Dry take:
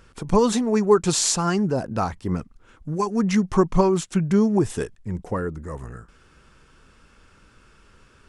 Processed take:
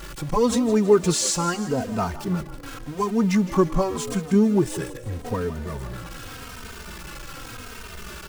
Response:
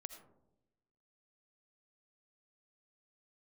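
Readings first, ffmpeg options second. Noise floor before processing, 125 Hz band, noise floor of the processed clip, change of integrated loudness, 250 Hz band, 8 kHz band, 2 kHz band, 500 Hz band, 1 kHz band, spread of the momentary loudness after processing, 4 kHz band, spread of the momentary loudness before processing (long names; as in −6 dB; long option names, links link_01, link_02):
−55 dBFS, −1.0 dB, −39 dBFS, −1.0 dB, −0.5 dB, −1.0 dB, +1.0 dB, −0.5 dB, −1.5 dB, 19 LU, −1.0 dB, 14 LU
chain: -filter_complex "[0:a]aeval=exprs='val(0)+0.5*0.0335*sgn(val(0))':channel_layout=same,asplit=2[link_01][link_02];[link_02]asplit=5[link_03][link_04][link_05][link_06][link_07];[link_03]adelay=163,afreqshift=51,volume=-14dB[link_08];[link_04]adelay=326,afreqshift=102,volume=-19.8dB[link_09];[link_05]adelay=489,afreqshift=153,volume=-25.7dB[link_10];[link_06]adelay=652,afreqshift=204,volume=-31.5dB[link_11];[link_07]adelay=815,afreqshift=255,volume=-37.4dB[link_12];[link_08][link_09][link_10][link_11][link_12]amix=inputs=5:normalize=0[link_13];[link_01][link_13]amix=inputs=2:normalize=0,asplit=2[link_14][link_15];[link_15]adelay=3,afreqshift=-0.85[link_16];[link_14][link_16]amix=inputs=2:normalize=1"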